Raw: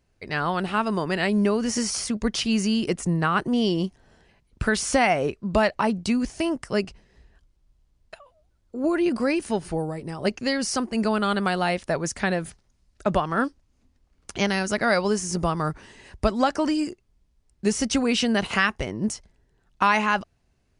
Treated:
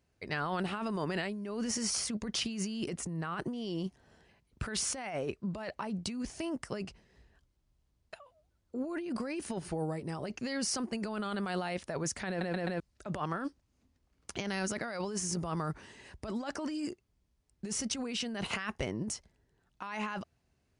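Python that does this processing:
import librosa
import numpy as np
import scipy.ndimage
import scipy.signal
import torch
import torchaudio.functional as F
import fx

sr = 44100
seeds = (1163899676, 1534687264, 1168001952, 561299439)

y = fx.edit(x, sr, fx.stutter_over(start_s=12.28, slice_s=0.13, count=4), tone=tone)
y = scipy.signal.sosfilt(scipy.signal.butter(2, 56.0, 'highpass', fs=sr, output='sos'), y)
y = fx.over_compress(y, sr, threshold_db=-27.0, ratio=-1.0)
y = y * 10.0 ** (-8.5 / 20.0)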